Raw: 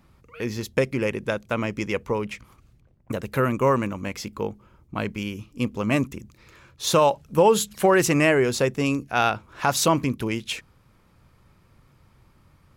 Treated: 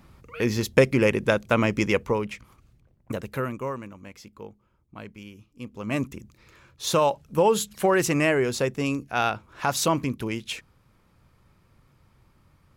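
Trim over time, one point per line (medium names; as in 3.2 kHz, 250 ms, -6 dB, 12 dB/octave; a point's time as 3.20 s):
1.88 s +4.5 dB
2.33 s -2 dB
3.17 s -2 dB
3.78 s -13 dB
5.63 s -13 dB
6.03 s -3 dB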